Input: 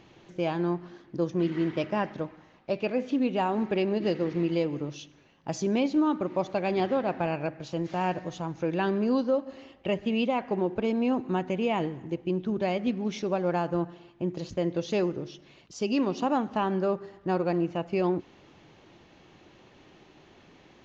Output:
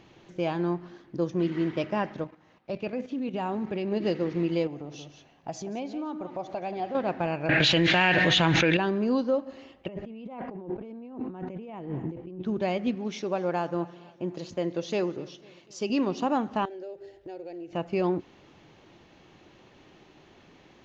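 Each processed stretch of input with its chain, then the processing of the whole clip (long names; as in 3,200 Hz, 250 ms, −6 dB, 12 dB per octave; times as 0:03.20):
0:02.24–0:03.92: high-pass filter 57 Hz + dynamic equaliser 100 Hz, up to +8 dB, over −46 dBFS, Q 0.85 + output level in coarse steps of 10 dB
0:04.67–0:06.95: single-tap delay 179 ms −11.5 dB + downward compressor 2 to 1, threshold −40 dBFS + parametric band 720 Hz +11 dB 0.36 octaves
0:07.49–0:08.77: flat-topped bell 2,500 Hz +15 dB + envelope flattener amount 100%
0:09.88–0:12.43: low-pass filter 1,100 Hz 6 dB per octave + compressor whose output falls as the input rises −38 dBFS
0:12.95–0:15.90: high-pass filter 210 Hz 6 dB per octave + repeating echo 248 ms, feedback 57%, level −22.5 dB
0:16.65–0:17.73: phaser with its sweep stopped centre 470 Hz, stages 4 + downward compressor 3 to 1, threshold −40 dBFS
whole clip: no processing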